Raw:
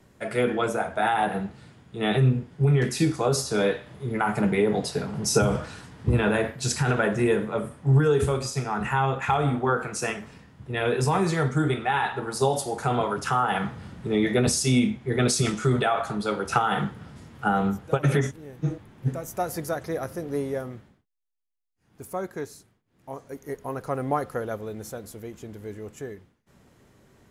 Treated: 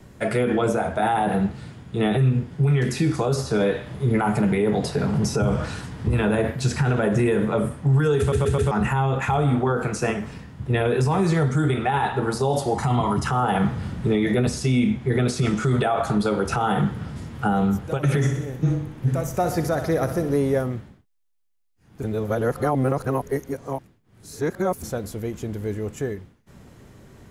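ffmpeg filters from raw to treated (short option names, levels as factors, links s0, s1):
-filter_complex "[0:a]asettb=1/sr,asplit=3[s0][s1][s2];[s0]atrim=end=12.754[s3];[s1]atrim=start=12.75:end=13.27,asetpts=PTS-STARTPTS,afade=t=in:d=0.004:c=qsin,afade=t=out:st=0.516:d=0.004:c=qsin,aecho=1:1:1:0.66,atrim=end_sample=22932[s4];[s2]atrim=start=13.266[s5];[s3][s4]acrossfade=d=0.004:c1=hsin:c2=qsin[s6];[s6][s5]acrossfade=d=0.004:c1=qsin:c2=hsin,asettb=1/sr,asplit=3[s7][s8][s9];[s7]atrim=end=18.094[s10];[s8]atrim=start=18.09:end=20.34,asetpts=PTS-STARTPTS,afade=t=in:d=0.004:c=qsin,afade=t=out:st=2.246:d=0.004:c=qsin,aecho=1:1:62|124|186|248|310|372:0.282|0.158|0.0884|0.0495|0.0277|0.0155,atrim=end_sample=99225[s11];[s9]atrim=start=20.336[s12];[s10][s11]acrossfade=d=0.004:c1=hsin:c2=qsin[s13];[s13][s12]acrossfade=d=0.004:c1=qsin:c2=hsin,asplit=7[s14][s15][s16][s17][s18][s19][s20];[s14]atrim=end=8.322[s21];[s15]atrim=start=8.188:end=8.322[s22];[s16]atrim=start=8.188:end=8.322[s23];[s17]atrim=start=8.188:end=8.322[s24];[s18]atrim=start=8.708:end=22.032[s25];[s19]atrim=start=22.028:end=24.832,asetpts=PTS-STARTPTS,areverse[s26];[s20]atrim=start=24.828[s27];[s21][s22]acrossfade=d=0.004:c1=hsin:c2=hsin[s28];[s28][s23]acrossfade=d=0.004:c1=hsin:c2=hsin[s29];[s29][s24]acrossfade=d=0.004:c1=hsin:c2=hsin[s30];[s30][s25]acrossfade=d=0.004:c1=hsin:c2=hsin[s31];[s31][s26]acrossfade=d=0.004:c1=hsin:c2=hsin[s32];[s32][s27]acrossfade=d=0.004:c1=hsin:c2=hsin,lowshelf=f=200:g=6.5,acrossover=split=940|2700|6600[s33][s34][s35][s36];[s33]acompressor=threshold=0.0891:ratio=4[s37];[s34]acompressor=threshold=0.0141:ratio=4[s38];[s35]acompressor=threshold=0.00501:ratio=4[s39];[s36]acompressor=threshold=0.00355:ratio=4[s40];[s37][s38][s39][s40]amix=inputs=4:normalize=0,alimiter=limit=0.106:level=0:latency=1:release=62,volume=2.24"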